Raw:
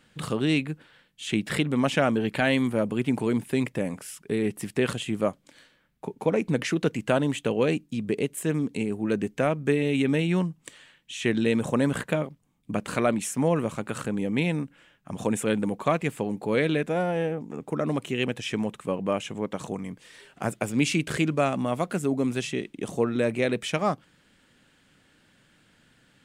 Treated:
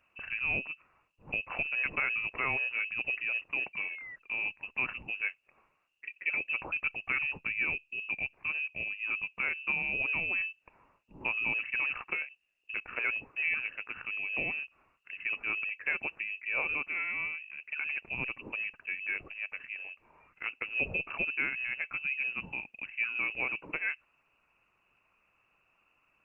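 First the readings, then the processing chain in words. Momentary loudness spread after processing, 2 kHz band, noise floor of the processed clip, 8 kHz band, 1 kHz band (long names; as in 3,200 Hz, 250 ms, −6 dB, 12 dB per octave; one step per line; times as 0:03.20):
9 LU, +3.5 dB, −74 dBFS, below −40 dB, −12.0 dB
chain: sound drawn into the spectrogram rise, 0:03.73–0:04.16, 420–900 Hz −36 dBFS
voice inversion scrambler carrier 2,800 Hz
level −8.5 dB
Opus 20 kbit/s 48,000 Hz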